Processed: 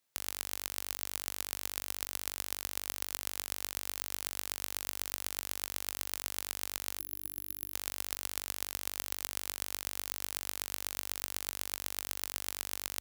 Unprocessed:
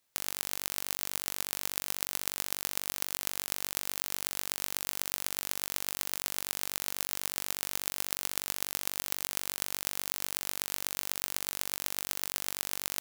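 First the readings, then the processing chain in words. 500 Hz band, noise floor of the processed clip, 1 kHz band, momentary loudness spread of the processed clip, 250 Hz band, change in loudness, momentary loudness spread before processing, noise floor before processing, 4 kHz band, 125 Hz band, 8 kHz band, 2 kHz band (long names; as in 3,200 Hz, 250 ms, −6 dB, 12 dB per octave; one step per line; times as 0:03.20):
−3.5 dB, −44 dBFS, −3.5 dB, 1 LU, −3.5 dB, −3.5 dB, 1 LU, −38 dBFS, −3.5 dB, −4.0 dB, −3.5 dB, −3.5 dB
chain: high-pass filter 50 Hz
gain on a spectral selection 0:07.00–0:07.74, 330–11,000 Hz −13 dB
level −3.5 dB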